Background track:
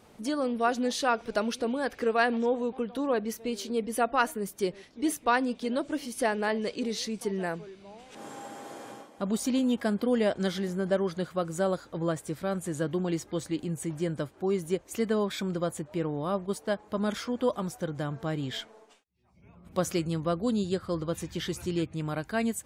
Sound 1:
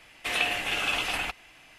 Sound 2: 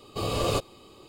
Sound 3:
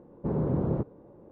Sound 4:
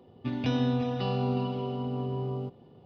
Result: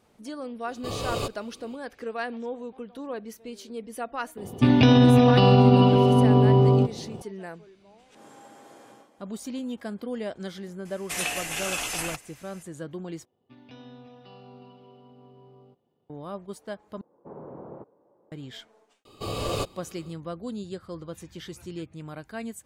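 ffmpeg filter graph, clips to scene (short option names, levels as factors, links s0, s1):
-filter_complex "[2:a]asplit=2[s0][s1];[4:a]asplit=2[s2][s3];[0:a]volume=0.447[s4];[s2]alimiter=level_in=11.9:limit=0.891:release=50:level=0:latency=1[s5];[1:a]highshelf=f=4800:t=q:w=1.5:g=10.5[s6];[s3]lowshelf=f=200:g=-10[s7];[3:a]bandpass=f=880:t=q:w=1:csg=0[s8];[s4]asplit=3[s9][s10][s11];[s9]atrim=end=13.254[s12];[s7]atrim=end=2.85,asetpts=PTS-STARTPTS,volume=0.158[s13];[s10]atrim=start=16.096:end=17.014[s14];[s8]atrim=end=1.31,asetpts=PTS-STARTPTS,volume=0.531[s15];[s11]atrim=start=18.316[s16];[s0]atrim=end=1.08,asetpts=PTS-STARTPTS,volume=0.668,afade=t=in:d=0.004:c=hsin,afade=t=out:st=1.076:d=0.004:c=hsin,adelay=680[s17];[s5]atrim=end=2.85,asetpts=PTS-STARTPTS,volume=0.473,afade=t=in:d=0.004:c=hsin,afade=t=out:st=2.846:d=0.004:c=hsin,adelay=192717S[s18];[s6]atrim=end=1.78,asetpts=PTS-STARTPTS,volume=0.75,afade=t=in:d=0.004:c=hsin,afade=t=out:st=1.776:d=0.004:c=hsin,adelay=10850[s19];[s1]atrim=end=1.08,asetpts=PTS-STARTPTS,volume=0.75,afade=t=in:d=0.004:c=hsin,afade=t=out:st=1.076:d=0.004:c=hsin,adelay=19050[s20];[s12][s13]acrossfade=d=0.004:c1=hsin:c2=hsin[s21];[s21][s14]acrossfade=d=0.004:c1=hsin:c2=hsin[s22];[s22][s15]acrossfade=d=0.004:c1=hsin:c2=hsin[s23];[s23][s16]acrossfade=d=0.004:c1=hsin:c2=hsin[s24];[s24][s17][s18][s19][s20]amix=inputs=5:normalize=0"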